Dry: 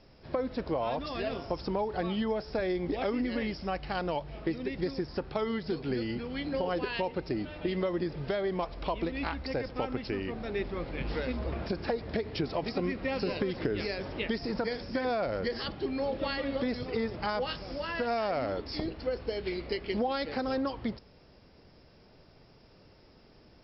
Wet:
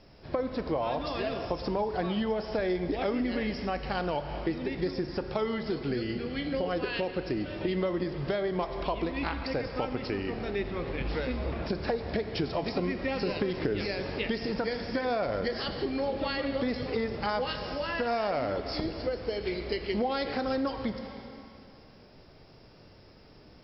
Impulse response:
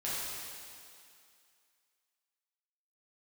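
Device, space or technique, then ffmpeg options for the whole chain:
ducked reverb: -filter_complex "[0:a]asplit=3[link_01][link_02][link_03];[1:a]atrim=start_sample=2205[link_04];[link_02][link_04]afir=irnorm=-1:irlink=0[link_05];[link_03]apad=whole_len=1042435[link_06];[link_05][link_06]sidechaincompress=threshold=-36dB:ratio=8:attack=47:release=273,volume=-6.5dB[link_07];[link_01][link_07]amix=inputs=2:normalize=0,asettb=1/sr,asplit=3[link_08][link_09][link_10];[link_08]atrim=end=5.884[link_11];[link_09]atrim=start=5.88:end=7.61,asetpts=PTS-STARTPTS,afade=type=in:duration=0.004:curve=qsin,afade=type=out:start_time=1.726:duration=0.004:curve=qsin,equalizer=frequency=920:width=6.2:gain=-9[link_12];[link_10]atrim=start=7.606[link_13];[link_11][link_12]acrossfade=duration=0.004:curve1=hsin:curve2=qsin[link_14];[link_14][link_13]acrossfade=duration=0.004:curve1=qsin:curve2=hsin"

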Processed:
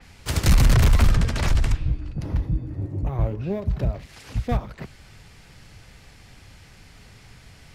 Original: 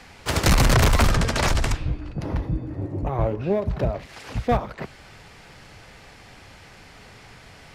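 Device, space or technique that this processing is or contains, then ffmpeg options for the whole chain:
smiley-face EQ: -af "lowshelf=frequency=180:gain=7.5,equalizer=frequency=700:width_type=o:width=2.6:gain=-5,highshelf=frequency=6700:gain=5.5,adynamicequalizer=threshold=0.01:dfrequency=4100:dqfactor=0.7:tfrequency=4100:tqfactor=0.7:attack=5:release=100:ratio=0.375:range=3.5:mode=cutabove:tftype=highshelf,volume=-3.5dB"

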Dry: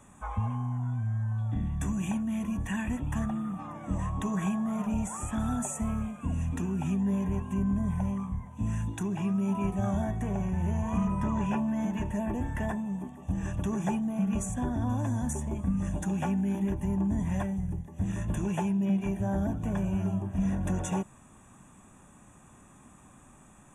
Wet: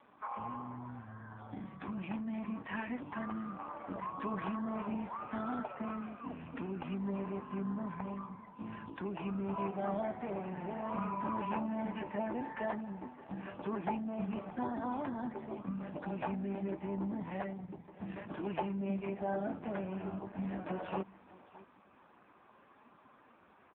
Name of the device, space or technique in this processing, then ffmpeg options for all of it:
satellite phone: -af "highpass=370,lowpass=3000,aecho=1:1:615:0.112,volume=1.5dB" -ar 8000 -c:a libopencore_amrnb -b:a 5150

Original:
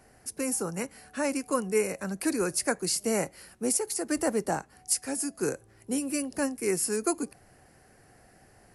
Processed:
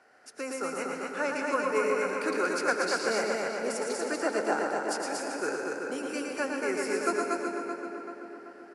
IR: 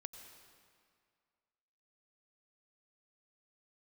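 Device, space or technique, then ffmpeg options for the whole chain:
station announcement: -filter_complex "[0:a]highpass=410,lowpass=4700,equalizer=frequency=1400:width_type=o:width=0.26:gain=10,aecho=1:1:113.7|236.2:0.562|0.708,asplit=2[link_01][link_02];[link_02]adelay=384,lowpass=frequency=2800:poles=1,volume=-5dB,asplit=2[link_03][link_04];[link_04]adelay=384,lowpass=frequency=2800:poles=1,volume=0.54,asplit=2[link_05][link_06];[link_06]adelay=384,lowpass=frequency=2800:poles=1,volume=0.54,asplit=2[link_07][link_08];[link_08]adelay=384,lowpass=frequency=2800:poles=1,volume=0.54,asplit=2[link_09][link_10];[link_10]adelay=384,lowpass=frequency=2800:poles=1,volume=0.54,asplit=2[link_11][link_12];[link_12]adelay=384,lowpass=frequency=2800:poles=1,volume=0.54,asplit=2[link_13][link_14];[link_14]adelay=384,lowpass=frequency=2800:poles=1,volume=0.54[link_15];[link_01][link_03][link_05][link_07][link_09][link_11][link_13][link_15]amix=inputs=8:normalize=0[link_16];[1:a]atrim=start_sample=2205[link_17];[link_16][link_17]afir=irnorm=-1:irlink=0,volume=4dB"

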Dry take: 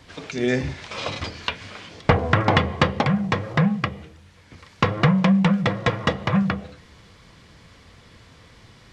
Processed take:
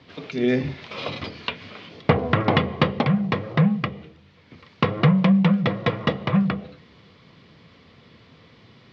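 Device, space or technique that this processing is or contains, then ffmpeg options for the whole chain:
guitar cabinet: -af "highpass=110,equalizer=frequency=150:width_type=q:width=4:gain=4,equalizer=frequency=240:width_type=q:width=4:gain=4,equalizer=frequency=410:width_type=q:width=4:gain=3,equalizer=frequency=870:width_type=q:width=4:gain=-3,equalizer=frequency=1600:width_type=q:width=4:gain=-5,lowpass=frequency=4500:width=0.5412,lowpass=frequency=4500:width=1.3066,volume=-1dB"

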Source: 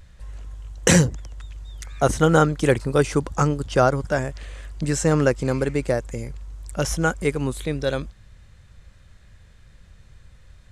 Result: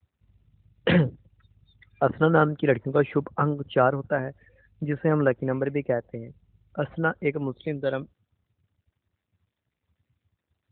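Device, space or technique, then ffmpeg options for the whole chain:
mobile call with aggressive noise cancelling: -af "highpass=frequency=140:poles=1,afftdn=noise_reduction=29:noise_floor=-37,volume=-2dB" -ar 8000 -c:a libopencore_amrnb -b:a 12200

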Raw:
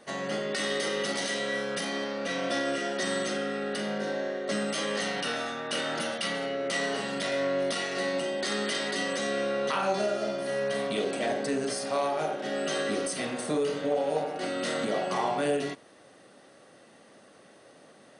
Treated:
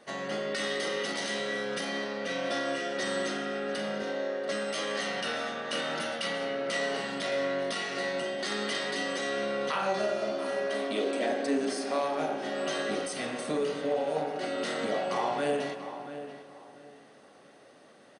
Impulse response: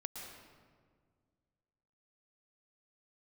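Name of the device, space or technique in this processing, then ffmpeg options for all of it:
filtered reverb send: -filter_complex "[0:a]asplit=2[link_01][link_02];[link_02]highpass=frequency=300:poles=1,lowpass=7000[link_03];[1:a]atrim=start_sample=2205[link_04];[link_03][link_04]afir=irnorm=-1:irlink=0,volume=-2dB[link_05];[link_01][link_05]amix=inputs=2:normalize=0,asettb=1/sr,asplit=3[link_06][link_07][link_08];[link_06]atrim=end=4.024[link_09];[link_07]atrim=start=4.02:end=5.09,asetpts=PTS-STARTPTS,afade=type=in:duration=0.004:curve=qsin,afade=type=out:start_time=1.066:duration=0.004:curve=qsin,highpass=frequency=180:poles=1[link_10];[link_08]atrim=start=5.086[link_11];[link_09][link_10]acrossfade=duration=0.004:curve1=hsin:curve2=qsin[link_12];[link_12][link_11]acrossfade=duration=0.004:curve1=qsin:curve2=hsin,asettb=1/sr,asplit=3[link_13][link_14][link_15];[link_13]atrim=end=10.314[link_16];[link_14]atrim=start=10.31:end=12,asetpts=PTS-STARTPTS,afade=type=in:duration=0.004:curve=qsin,afade=type=out:start_time=1.686:duration=0.004:curve=qsin,lowshelf=frequency=210:width_type=q:width=3:gain=-6[link_17];[link_15]atrim=start=11.996[link_18];[link_16][link_17]acrossfade=duration=0.004:curve1=hsin:curve2=qsin[link_19];[link_19][link_18]acrossfade=duration=0.004:curve1=qsin:curve2=hsin,asplit=2[link_20][link_21];[link_21]adelay=686,lowpass=frequency=2400:poles=1,volume=-11dB,asplit=2[link_22][link_23];[link_23]adelay=686,lowpass=frequency=2400:poles=1,volume=0.26,asplit=2[link_24][link_25];[link_25]adelay=686,lowpass=frequency=2400:poles=1,volume=0.26[link_26];[link_20][link_22][link_24][link_26]amix=inputs=4:normalize=0,volume=-5dB"

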